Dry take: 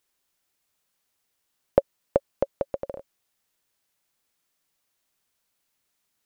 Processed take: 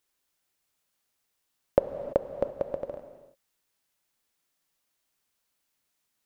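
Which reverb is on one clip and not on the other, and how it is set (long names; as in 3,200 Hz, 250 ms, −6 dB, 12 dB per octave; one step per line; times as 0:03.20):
reverb whose tail is shaped and stops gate 360 ms flat, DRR 8.5 dB
level −2.5 dB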